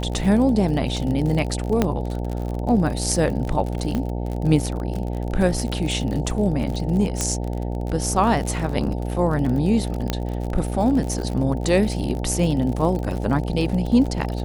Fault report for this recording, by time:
buzz 60 Hz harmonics 15 -26 dBFS
crackle 44/s -27 dBFS
1.82 pop -5 dBFS
3.95 pop -13 dBFS
7.21 pop -8 dBFS
10.1 pop -8 dBFS

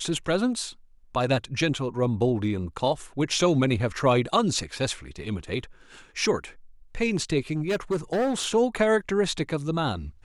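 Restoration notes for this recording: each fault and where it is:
7.51–8.48 clipped -21 dBFS

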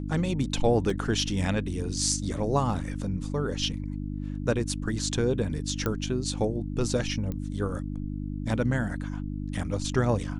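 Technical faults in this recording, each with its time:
hum 50 Hz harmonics 6 -33 dBFS
0.9 gap 3.4 ms
5.86 pop -14 dBFS
7.32 pop -22 dBFS

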